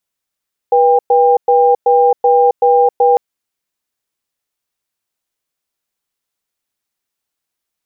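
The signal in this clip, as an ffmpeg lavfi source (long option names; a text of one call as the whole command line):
ffmpeg -f lavfi -i "aevalsrc='0.335*(sin(2*PI*487*t)+sin(2*PI*799*t))*clip(min(mod(t,0.38),0.27-mod(t,0.38))/0.005,0,1)':duration=2.45:sample_rate=44100" out.wav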